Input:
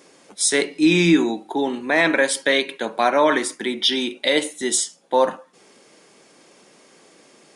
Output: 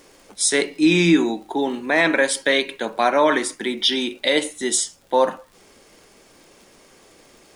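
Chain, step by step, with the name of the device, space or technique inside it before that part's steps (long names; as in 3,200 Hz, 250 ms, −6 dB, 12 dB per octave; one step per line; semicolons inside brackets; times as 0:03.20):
vinyl LP (surface crackle 69 per second −41 dBFS; pink noise bed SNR 39 dB)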